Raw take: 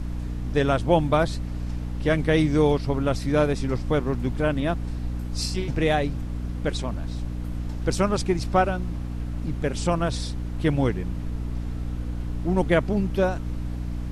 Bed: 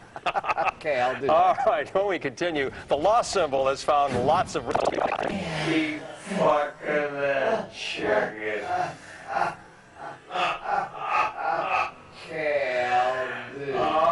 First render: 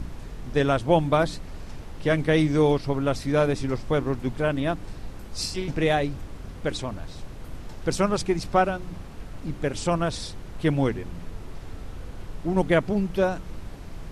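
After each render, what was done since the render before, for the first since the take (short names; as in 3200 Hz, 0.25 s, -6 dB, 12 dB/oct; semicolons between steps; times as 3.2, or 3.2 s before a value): de-hum 60 Hz, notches 5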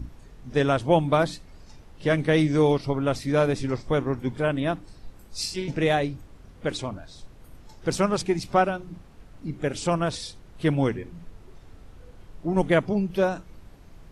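noise print and reduce 10 dB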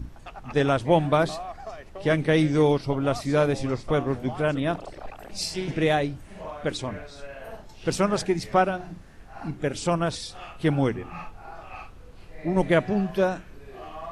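add bed -16.5 dB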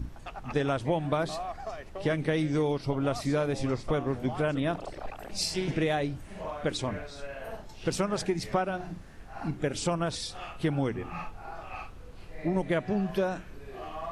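compressor 6:1, threshold -24 dBFS, peak gain reduction 10 dB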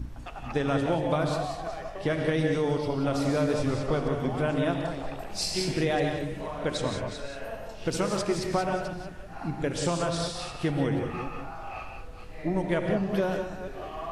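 reverse delay 0.24 s, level -10 dB; non-linear reverb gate 0.21 s rising, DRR 3.5 dB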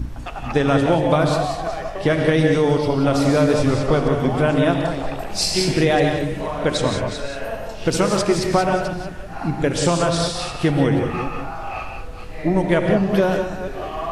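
gain +9.5 dB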